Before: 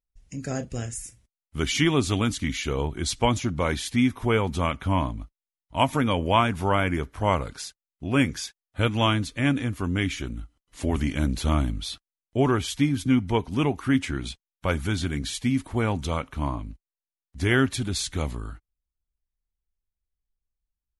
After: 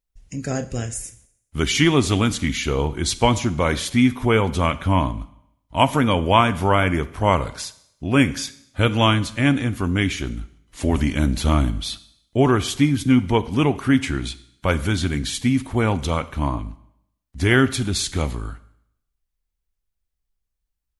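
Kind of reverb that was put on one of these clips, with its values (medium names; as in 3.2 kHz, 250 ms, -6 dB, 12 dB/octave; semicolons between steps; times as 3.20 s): Schroeder reverb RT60 0.73 s, combs from 32 ms, DRR 15.5 dB; trim +5 dB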